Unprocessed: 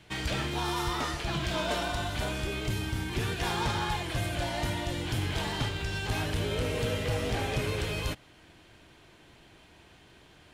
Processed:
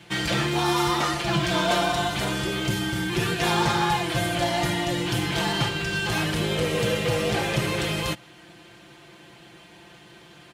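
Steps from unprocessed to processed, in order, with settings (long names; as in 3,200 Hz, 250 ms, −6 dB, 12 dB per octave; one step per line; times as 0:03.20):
high-pass filter 92 Hz 12 dB per octave
comb filter 5.8 ms, depth 72%
level +6 dB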